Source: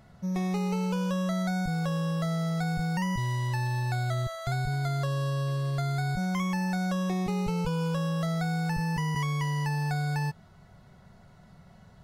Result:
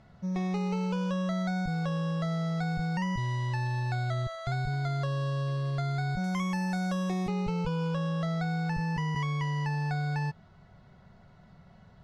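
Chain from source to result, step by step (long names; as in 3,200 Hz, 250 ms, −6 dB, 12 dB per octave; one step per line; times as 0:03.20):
low-pass filter 5,200 Hz 12 dB per octave, from 0:06.24 10,000 Hz, from 0:07.28 4,600 Hz
level −1.5 dB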